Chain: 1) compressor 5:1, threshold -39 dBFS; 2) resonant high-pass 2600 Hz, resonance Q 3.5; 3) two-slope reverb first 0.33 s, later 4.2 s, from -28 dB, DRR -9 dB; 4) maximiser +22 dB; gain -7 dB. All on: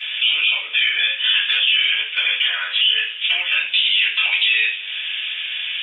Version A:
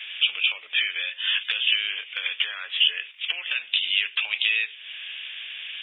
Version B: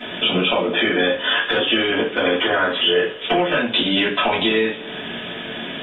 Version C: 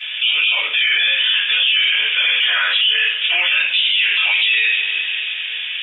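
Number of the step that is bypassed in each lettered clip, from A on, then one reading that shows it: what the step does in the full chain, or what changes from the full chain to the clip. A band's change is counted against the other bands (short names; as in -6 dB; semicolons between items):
3, crest factor change +7.5 dB; 2, 500 Hz band +31.0 dB; 1, mean gain reduction 8.5 dB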